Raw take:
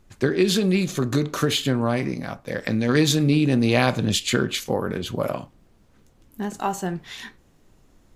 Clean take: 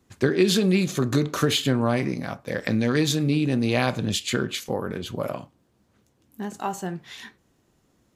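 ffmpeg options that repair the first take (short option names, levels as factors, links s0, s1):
-af "agate=range=0.0891:threshold=0.00398,asetnsamples=n=441:p=0,asendcmd='2.89 volume volume -3.5dB',volume=1"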